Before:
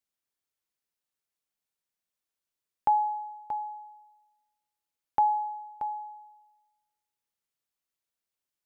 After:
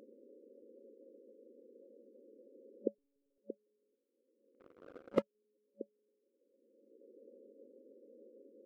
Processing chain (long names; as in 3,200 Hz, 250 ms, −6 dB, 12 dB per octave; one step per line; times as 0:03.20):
spike at every zero crossing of −22.5 dBFS
brick-wall band-pass 210–570 Hz
0:02.98–0:03.38: one-pitch LPC vocoder at 8 kHz 280 Hz
0:03.95–0:05.35: leveller curve on the samples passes 3
level +13.5 dB